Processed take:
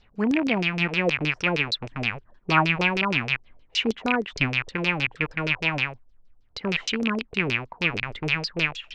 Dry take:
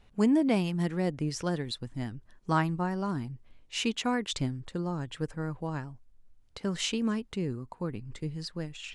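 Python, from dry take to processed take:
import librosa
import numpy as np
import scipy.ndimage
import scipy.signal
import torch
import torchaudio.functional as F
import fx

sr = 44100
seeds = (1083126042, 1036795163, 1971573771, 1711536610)

p1 = fx.rattle_buzz(x, sr, strikes_db=-43.0, level_db=-19.0)
p2 = fx.rider(p1, sr, range_db=10, speed_s=2.0)
p3 = p1 + (p2 * librosa.db_to_amplitude(2.0))
p4 = fx.filter_lfo_lowpass(p3, sr, shape='saw_down', hz=6.4, low_hz=420.0, high_hz=5900.0, q=3.9)
y = p4 * librosa.db_to_amplitude(-5.5)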